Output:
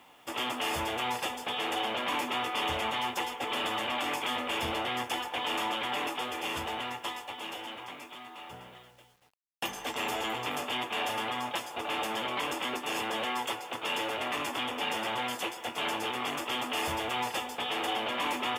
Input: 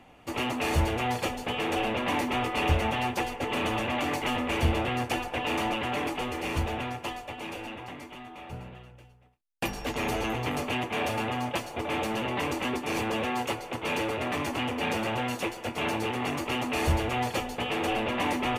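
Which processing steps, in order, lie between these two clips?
HPF 620 Hz 6 dB/oct; notch 3900 Hz, Q 6.4; in parallel at +0.5 dB: limiter -24.5 dBFS, peak gain reduction 7 dB; on the sum: formant shift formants +2 st; requantised 10-bit, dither none; gain -5.5 dB

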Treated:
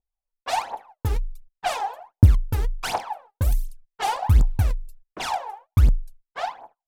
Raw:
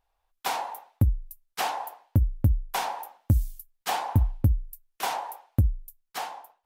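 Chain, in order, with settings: gate -51 dBFS, range -21 dB; in parallel at -6.5 dB: wrapped overs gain 23 dB; on the sum: low-pass opened by the level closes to 730 Hz, open at -22 dBFS; phaser 1.4 Hz, delay 2.5 ms, feedback 79%; wide varispeed 0.968×; gain -3 dB

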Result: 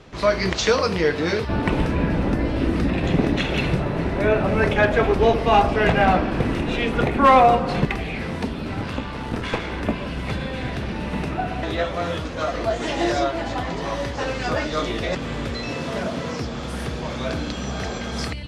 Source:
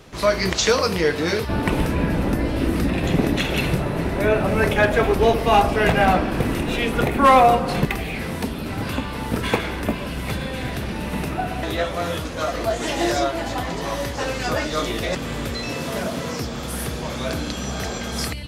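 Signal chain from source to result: 8.81–9.72 one-sided clip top -30 dBFS; air absorption 85 m

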